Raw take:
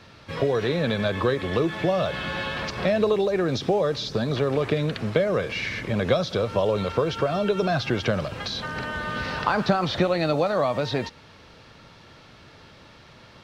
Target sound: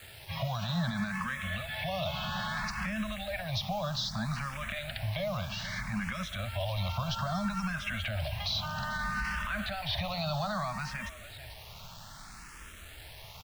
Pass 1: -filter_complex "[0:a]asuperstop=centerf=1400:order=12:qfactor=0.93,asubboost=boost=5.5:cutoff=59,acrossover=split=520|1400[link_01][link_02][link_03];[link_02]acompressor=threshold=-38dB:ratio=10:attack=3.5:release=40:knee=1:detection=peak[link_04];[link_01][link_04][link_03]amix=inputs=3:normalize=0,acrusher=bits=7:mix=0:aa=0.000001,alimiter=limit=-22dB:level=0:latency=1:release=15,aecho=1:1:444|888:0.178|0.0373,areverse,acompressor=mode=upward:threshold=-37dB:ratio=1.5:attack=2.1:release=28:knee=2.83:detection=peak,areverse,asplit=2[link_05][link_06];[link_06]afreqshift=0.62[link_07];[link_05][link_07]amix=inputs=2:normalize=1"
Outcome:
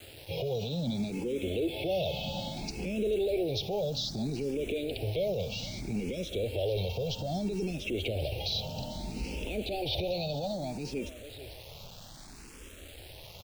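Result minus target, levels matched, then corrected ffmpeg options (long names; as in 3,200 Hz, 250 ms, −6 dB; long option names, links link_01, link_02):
1,000 Hz band −8.0 dB
-filter_complex "[0:a]asuperstop=centerf=370:order=12:qfactor=0.93,asubboost=boost=5.5:cutoff=59,acrossover=split=520|1400[link_01][link_02][link_03];[link_02]acompressor=threshold=-38dB:ratio=10:attack=3.5:release=40:knee=1:detection=peak[link_04];[link_01][link_04][link_03]amix=inputs=3:normalize=0,acrusher=bits=7:mix=0:aa=0.000001,alimiter=limit=-22dB:level=0:latency=1:release=15,aecho=1:1:444|888:0.178|0.0373,areverse,acompressor=mode=upward:threshold=-37dB:ratio=1.5:attack=2.1:release=28:knee=2.83:detection=peak,areverse,asplit=2[link_05][link_06];[link_06]afreqshift=0.62[link_07];[link_05][link_07]amix=inputs=2:normalize=1"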